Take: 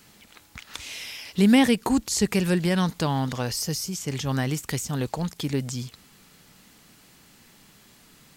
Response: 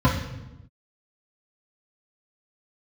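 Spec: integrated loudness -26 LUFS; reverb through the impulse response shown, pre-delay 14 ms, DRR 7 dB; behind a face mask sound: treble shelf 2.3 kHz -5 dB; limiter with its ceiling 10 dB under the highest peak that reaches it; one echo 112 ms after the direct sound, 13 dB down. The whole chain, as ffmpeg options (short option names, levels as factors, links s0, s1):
-filter_complex "[0:a]alimiter=limit=0.141:level=0:latency=1,aecho=1:1:112:0.224,asplit=2[s0][s1];[1:a]atrim=start_sample=2205,adelay=14[s2];[s1][s2]afir=irnorm=-1:irlink=0,volume=0.0596[s3];[s0][s3]amix=inputs=2:normalize=0,highshelf=f=2300:g=-5,volume=0.562"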